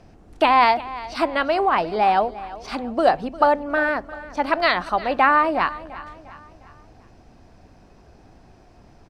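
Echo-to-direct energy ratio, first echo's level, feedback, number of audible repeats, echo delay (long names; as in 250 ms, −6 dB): −16.0 dB, −17.0 dB, 45%, 3, 352 ms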